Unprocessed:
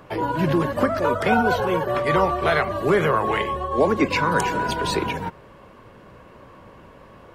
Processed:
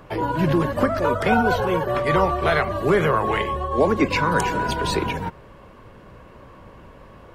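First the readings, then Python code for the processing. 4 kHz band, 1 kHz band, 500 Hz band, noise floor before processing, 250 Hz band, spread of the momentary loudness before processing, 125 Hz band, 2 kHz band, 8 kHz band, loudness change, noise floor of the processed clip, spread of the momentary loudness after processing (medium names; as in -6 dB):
0.0 dB, 0.0 dB, 0.0 dB, -47 dBFS, +1.0 dB, 5 LU, +2.5 dB, 0.0 dB, 0.0 dB, +0.5 dB, -46 dBFS, 5 LU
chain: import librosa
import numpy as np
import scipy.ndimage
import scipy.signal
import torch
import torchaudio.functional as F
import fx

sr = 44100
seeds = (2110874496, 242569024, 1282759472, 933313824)

y = fx.low_shelf(x, sr, hz=72.0, db=9.5)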